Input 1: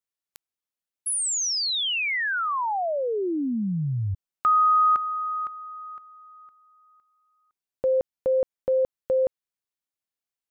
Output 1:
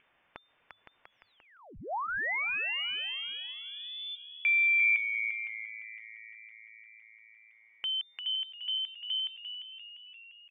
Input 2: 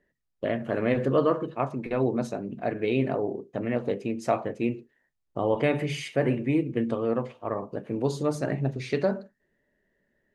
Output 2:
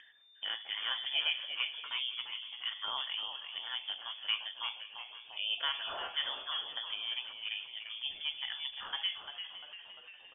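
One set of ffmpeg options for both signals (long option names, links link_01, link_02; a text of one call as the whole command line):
ffmpeg -i in.wav -filter_complex "[0:a]equalizer=frequency=200:width_type=o:width=2.4:gain=-14,acrossover=split=2000[link_01][link_02];[link_02]acompressor=threshold=-37dB:ratio=6:attack=13:release=34[link_03];[link_01][link_03]amix=inputs=2:normalize=0,asplit=2[link_04][link_05];[link_05]adelay=513.1,volume=-16dB,highshelf=frequency=4000:gain=-11.5[link_06];[link_04][link_06]amix=inputs=2:normalize=0,lowpass=frequency=3100:width_type=q:width=0.5098,lowpass=frequency=3100:width_type=q:width=0.6013,lowpass=frequency=3100:width_type=q:width=0.9,lowpass=frequency=3100:width_type=q:width=2.563,afreqshift=-3600,adynamicequalizer=threshold=0.00316:dfrequency=780:dqfactor=1.7:tfrequency=780:tqfactor=1.7:attack=5:release=100:ratio=0.375:range=3:mode=boostabove:tftype=bell,asplit=2[link_07][link_08];[link_08]asplit=4[link_09][link_10][link_11][link_12];[link_09]adelay=347,afreqshift=-110,volume=-9dB[link_13];[link_10]adelay=694,afreqshift=-220,volume=-17.9dB[link_14];[link_11]adelay=1041,afreqshift=-330,volume=-26.7dB[link_15];[link_12]adelay=1388,afreqshift=-440,volume=-35.6dB[link_16];[link_13][link_14][link_15][link_16]amix=inputs=4:normalize=0[link_17];[link_07][link_17]amix=inputs=2:normalize=0,acompressor=mode=upward:threshold=-42dB:ratio=2.5:attack=26:release=50:knee=2.83:detection=peak,bandreject=frequency=1300:width=26,volume=-5dB" out.wav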